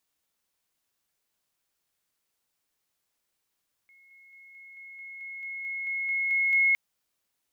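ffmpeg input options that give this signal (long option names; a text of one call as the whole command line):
ffmpeg -f lavfi -i "aevalsrc='pow(10,(-55+3*floor(t/0.22))/20)*sin(2*PI*2170*t)':duration=2.86:sample_rate=44100" out.wav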